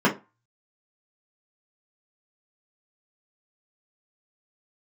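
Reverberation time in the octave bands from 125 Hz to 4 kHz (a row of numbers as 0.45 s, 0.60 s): 0.30 s, 0.25 s, 0.25 s, 0.30 s, 0.25 s, 0.20 s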